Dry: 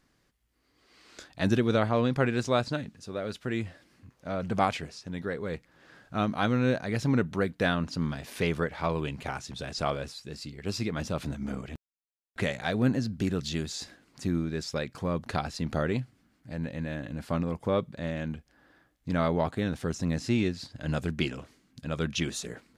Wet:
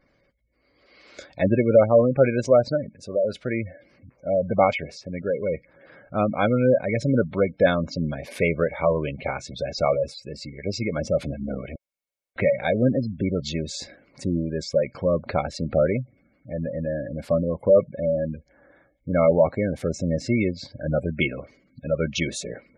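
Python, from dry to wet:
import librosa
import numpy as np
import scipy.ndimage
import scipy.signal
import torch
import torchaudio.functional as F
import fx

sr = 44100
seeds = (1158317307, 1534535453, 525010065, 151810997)

y = fx.small_body(x, sr, hz=(560.0, 2200.0), ring_ms=35, db=13)
y = fx.spec_gate(y, sr, threshold_db=-20, keep='strong')
y = y * 10.0 ** (3.5 / 20.0)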